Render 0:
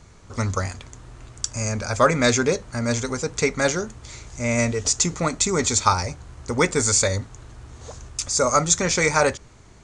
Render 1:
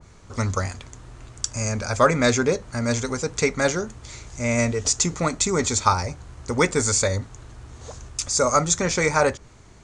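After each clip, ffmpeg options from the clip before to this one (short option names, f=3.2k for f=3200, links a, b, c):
-af "adynamicequalizer=threshold=0.0282:dfrequency=1900:dqfactor=0.7:tfrequency=1900:tqfactor=0.7:attack=5:release=100:ratio=0.375:range=2.5:mode=cutabove:tftype=highshelf"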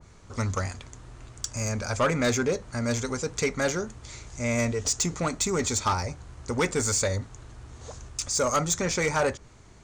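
-af "asoftclip=type=tanh:threshold=-14dB,volume=-3dB"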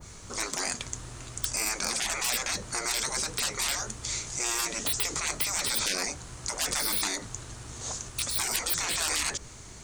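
-af "crystalizer=i=3:c=0,afftfilt=real='re*lt(hypot(re,im),0.0708)':imag='im*lt(hypot(re,im),0.0708)':win_size=1024:overlap=0.75,volume=4dB"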